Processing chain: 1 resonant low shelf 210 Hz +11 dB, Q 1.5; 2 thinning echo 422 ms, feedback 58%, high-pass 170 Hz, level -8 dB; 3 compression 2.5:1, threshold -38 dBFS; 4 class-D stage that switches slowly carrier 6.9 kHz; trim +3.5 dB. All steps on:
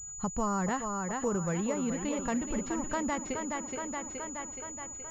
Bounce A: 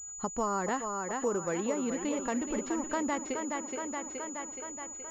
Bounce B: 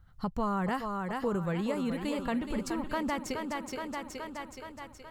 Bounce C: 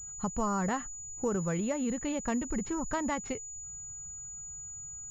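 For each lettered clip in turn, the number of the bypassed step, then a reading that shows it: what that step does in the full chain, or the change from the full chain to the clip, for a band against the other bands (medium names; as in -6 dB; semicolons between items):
1, 125 Hz band -8.5 dB; 4, 4 kHz band +4.5 dB; 2, momentary loudness spread change +2 LU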